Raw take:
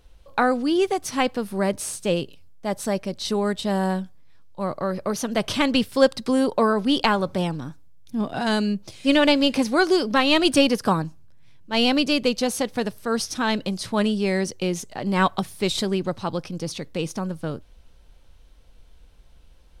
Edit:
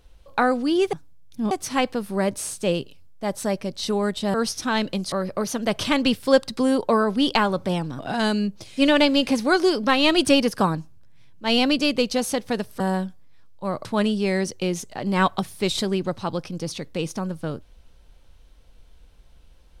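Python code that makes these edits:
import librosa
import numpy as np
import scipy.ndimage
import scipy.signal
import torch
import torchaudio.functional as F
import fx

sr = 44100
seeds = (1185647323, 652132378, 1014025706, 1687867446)

y = fx.edit(x, sr, fx.swap(start_s=3.76, length_s=1.05, other_s=13.07, other_length_s=0.78),
    fx.move(start_s=7.68, length_s=0.58, to_s=0.93), tone=tone)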